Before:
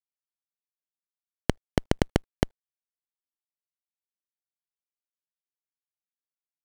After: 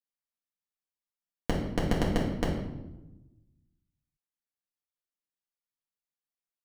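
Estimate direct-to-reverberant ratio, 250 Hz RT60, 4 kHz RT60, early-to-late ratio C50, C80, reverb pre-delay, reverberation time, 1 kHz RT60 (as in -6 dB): -5.0 dB, 1.5 s, 0.70 s, 4.0 dB, 6.5 dB, 4 ms, 1.0 s, 0.90 s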